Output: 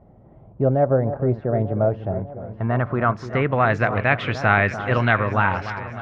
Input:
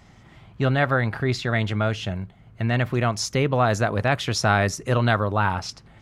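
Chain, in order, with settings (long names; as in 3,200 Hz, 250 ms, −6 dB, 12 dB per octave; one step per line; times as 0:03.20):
low-pass filter sweep 580 Hz → 2,200 Hz, 0:01.72–0:03.76
delay that swaps between a low-pass and a high-pass 298 ms, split 1,400 Hz, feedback 76%, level −11 dB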